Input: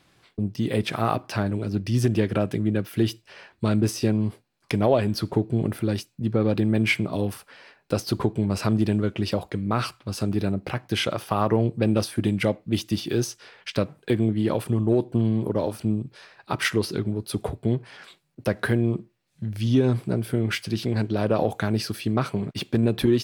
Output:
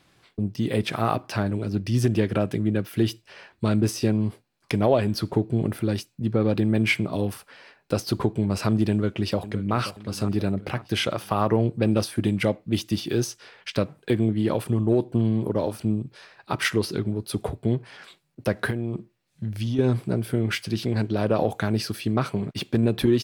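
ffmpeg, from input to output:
ffmpeg -i in.wav -filter_complex "[0:a]asplit=2[link_01][link_02];[link_02]afade=type=in:start_time=8.9:duration=0.01,afade=type=out:start_time=9.75:duration=0.01,aecho=0:1:530|1060|1590|2120|2650:0.199526|0.0997631|0.0498816|0.0249408|0.0124704[link_03];[link_01][link_03]amix=inputs=2:normalize=0,asettb=1/sr,asplit=3[link_04][link_05][link_06];[link_04]atrim=end=18.704[link_07];[link_05]atrim=start=18.7:end=19.79,asetpts=PTS-STARTPTS,afade=type=in:duration=0.004:curve=qsin,afade=type=out:start_time=1.086:duration=0.004:curve=qsin,acompressor=threshold=-22dB:ratio=10:attack=3.2:release=140:knee=1:detection=peak[link_08];[link_06]atrim=start=19.786[link_09];[link_07][link_08]acrossfade=duration=0.004:curve1=hsin:curve2=qsin[link_10];[link_10][link_09]acrossfade=duration=0.004:curve1=qsin:curve2=hsin" out.wav

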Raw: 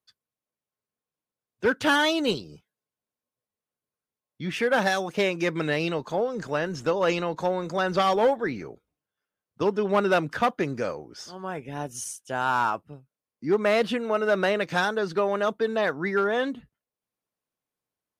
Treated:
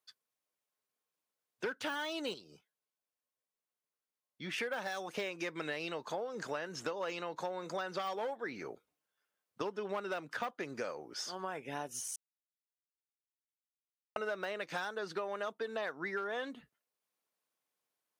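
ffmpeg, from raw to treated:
ffmpeg -i in.wav -filter_complex "[0:a]asplit=5[link_01][link_02][link_03][link_04][link_05];[link_01]atrim=end=2.342[link_06];[link_02]atrim=start=2.338:end=4.582,asetpts=PTS-STARTPTS,volume=-5.5dB[link_07];[link_03]atrim=start=4.578:end=12.16,asetpts=PTS-STARTPTS,afade=type=out:start_time=7.578:duration=0.004:curve=hsin[link_08];[link_04]atrim=start=12.16:end=14.16,asetpts=PTS-STARTPTS,volume=0[link_09];[link_05]atrim=start=14.16,asetpts=PTS-STARTPTS,afade=type=in:duration=0.004:curve=hsin[link_10];[link_06][link_07]acrossfade=duration=0.004:curve1=hsin:curve2=hsin[link_11];[link_08][link_09][link_10]concat=n=3:v=0:a=1[link_12];[link_11][link_12]acrossfade=duration=0.004:curve1=hsin:curve2=hsin,deesser=0.75,highpass=frequency=570:poles=1,acompressor=threshold=-38dB:ratio=6,volume=2dB" out.wav

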